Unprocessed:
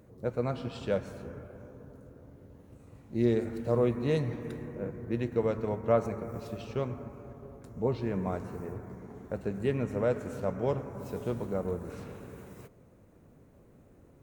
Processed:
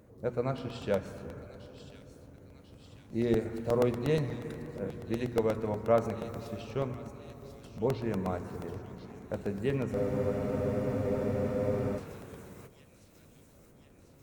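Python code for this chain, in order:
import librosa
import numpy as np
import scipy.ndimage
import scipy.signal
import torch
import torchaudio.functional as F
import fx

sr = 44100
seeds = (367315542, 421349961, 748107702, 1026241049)

p1 = fx.hum_notches(x, sr, base_hz=60, count=7)
p2 = p1 + fx.echo_wet_highpass(p1, sr, ms=1043, feedback_pct=61, hz=3500.0, wet_db=-6.5, dry=0)
p3 = fx.buffer_crackle(p2, sr, first_s=0.58, period_s=0.12, block=64, kind='repeat')
y = fx.spec_freeze(p3, sr, seeds[0], at_s=9.97, hold_s=1.99)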